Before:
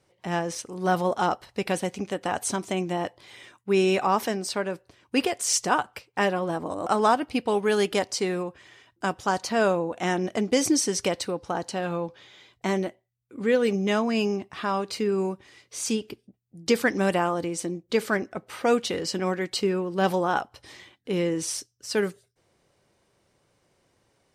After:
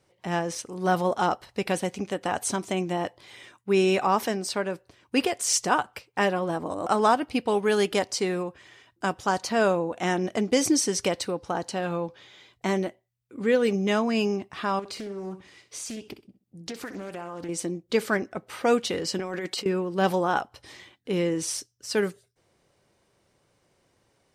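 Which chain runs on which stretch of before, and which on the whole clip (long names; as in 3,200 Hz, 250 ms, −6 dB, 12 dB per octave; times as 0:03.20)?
0:14.79–0:17.49: downward compressor 10 to 1, threshold −32 dBFS + flutter between parallel walls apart 11 metres, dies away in 0.32 s + highs frequency-modulated by the lows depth 0.34 ms
0:19.19–0:19.66: high-pass filter 200 Hz + compressor whose output falls as the input rises −32 dBFS
whole clip: no processing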